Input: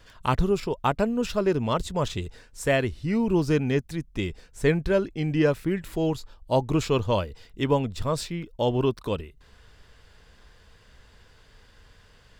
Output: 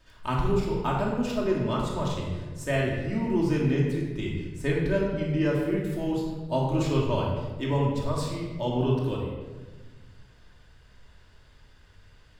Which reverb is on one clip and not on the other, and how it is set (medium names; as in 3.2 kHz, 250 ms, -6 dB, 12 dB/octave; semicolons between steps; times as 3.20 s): simulated room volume 1100 m³, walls mixed, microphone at 2.7 m; trim -8.5 dB